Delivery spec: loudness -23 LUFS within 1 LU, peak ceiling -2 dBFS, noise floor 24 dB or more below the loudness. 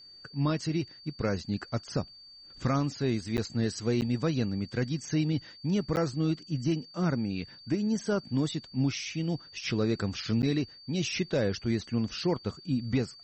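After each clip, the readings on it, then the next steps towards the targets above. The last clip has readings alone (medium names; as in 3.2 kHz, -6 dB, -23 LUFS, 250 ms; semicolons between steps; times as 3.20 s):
dropouts 4; longest dropout 9.3 ms; steady tone 4.6 kHz; tone level -49 dBFS; loudness -31.0 LUFS; peak level -17.5 dBFS; loudness target -23.0 LUFS
-> interpolate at 3.37/4.01/5.96/10.42 s, 9.3 ms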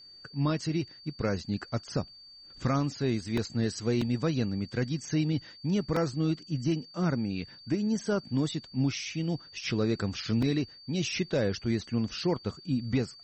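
dropouts 0; steady tone 4.6 kHz; tone level -49 dBFS
-> band-stop 4.6 kHz, Q 30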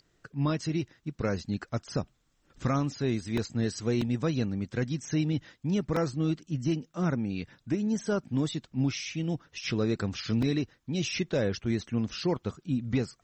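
steady tone not found; loudness -31.0 LUFS; peak level -18.0 dBFS; loudness target -23.0 LUFS
-> trim +8 dB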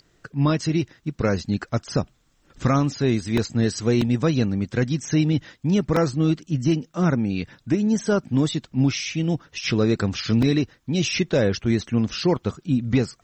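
loudness -23.0 LUFS; peak level -10.0 dBFS; noise floor -63 dBFS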